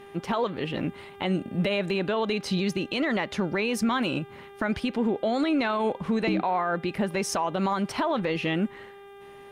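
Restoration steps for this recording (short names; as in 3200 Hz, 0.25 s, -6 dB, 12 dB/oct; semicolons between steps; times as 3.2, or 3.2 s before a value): de-hum 399.1 Hz, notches 9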